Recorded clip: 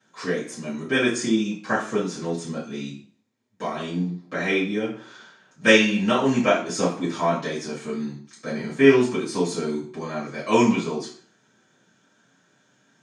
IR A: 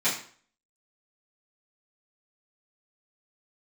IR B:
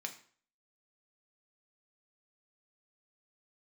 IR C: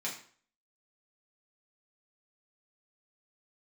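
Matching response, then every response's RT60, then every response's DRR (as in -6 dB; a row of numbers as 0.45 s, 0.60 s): A; 0.50 s, 0.50 s, 0.50 s; -14.0 dB, 3.5 dB, -5.5 dB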